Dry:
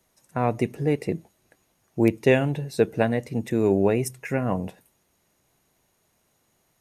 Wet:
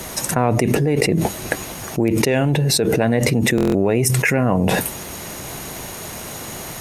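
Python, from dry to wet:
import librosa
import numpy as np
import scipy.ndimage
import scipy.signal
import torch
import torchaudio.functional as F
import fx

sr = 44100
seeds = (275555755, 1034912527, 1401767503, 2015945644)

y = fx.cheby_harmonics(x, sr, harmonics=(7,), levels_db=(-38,), full_scale_db=-4.5)
y = fx.buffer_glitch(y, sr, at_s=(3.56,), block=1024, repeats=7)
y = fx.env_flatten(y, sr, amount_pct=100)
y = y * librosa.db_to_amplitude(-2.0)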